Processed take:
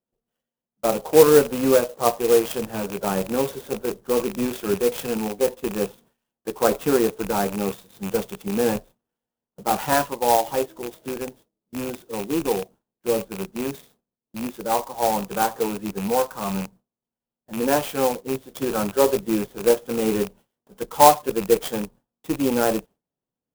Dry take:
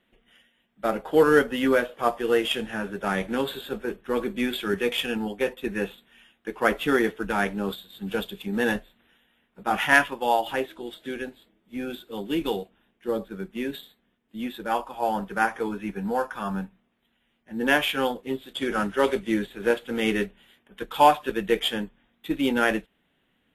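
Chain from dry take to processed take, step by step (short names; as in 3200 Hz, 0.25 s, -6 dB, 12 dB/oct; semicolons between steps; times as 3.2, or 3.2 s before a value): rattling part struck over -38 dBFS, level -16 dBFS; gate with hold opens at -43 dBFS; graphic EQ 125/500/1000/2000 Hz +9/+7/+6/-12 dB; clock jitter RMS 0.063 ms; gain -1.5 dB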